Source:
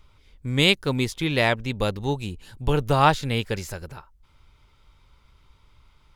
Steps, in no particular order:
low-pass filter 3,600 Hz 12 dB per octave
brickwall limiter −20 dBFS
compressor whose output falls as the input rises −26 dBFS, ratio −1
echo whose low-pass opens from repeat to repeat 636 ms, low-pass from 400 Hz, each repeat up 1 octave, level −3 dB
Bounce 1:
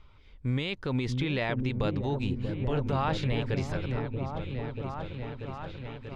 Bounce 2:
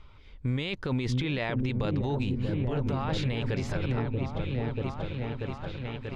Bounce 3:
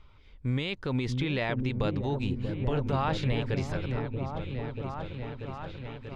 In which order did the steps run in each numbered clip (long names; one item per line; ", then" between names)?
low-pass filter, then brickwall limiter, then echo whose low-pass opens from repeat to repeat, then compressor whose output falls as the input rises
low-pass filter, then compressor whose output falls as the input rises, then echo whose low-pass opens from repeat to repeat, then brickwall limiter
low-pass filter, then brickwall limiter, then compressor whose output falls as the input rises, then echo whose low-pass opens from repeat to repeat